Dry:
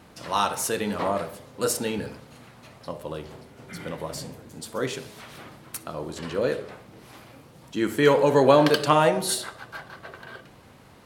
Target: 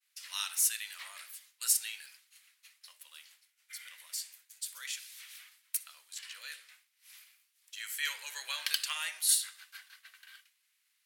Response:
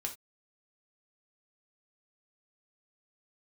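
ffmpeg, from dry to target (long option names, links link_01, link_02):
-af "highpass=frequency=2000:width_type=q:width=1.7,aderivative,agate=range=-33dB:threshold=-53dB:ratio=3:detection=peak"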